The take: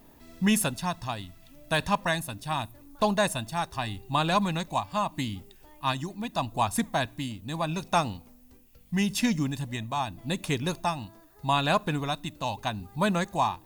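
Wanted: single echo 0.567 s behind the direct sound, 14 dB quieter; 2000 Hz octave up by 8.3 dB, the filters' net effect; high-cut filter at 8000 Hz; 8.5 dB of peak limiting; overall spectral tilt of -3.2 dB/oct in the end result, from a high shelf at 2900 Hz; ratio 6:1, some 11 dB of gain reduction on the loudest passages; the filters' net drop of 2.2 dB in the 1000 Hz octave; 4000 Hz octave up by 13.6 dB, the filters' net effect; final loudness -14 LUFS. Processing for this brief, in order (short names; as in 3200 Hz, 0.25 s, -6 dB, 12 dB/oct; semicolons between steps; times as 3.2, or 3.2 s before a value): LPF 8000 Hz; bell 1000 Hz -5.5 dB; bell 2000 Hz +6 dB; high shelf 2900 Hz +9 dB; bell 4000 Hz +8 dB; compressor 6:1, threshold -27 dBFS; limiter -21 dBFS; echo 0.567 s -14 dB; gain +19 dB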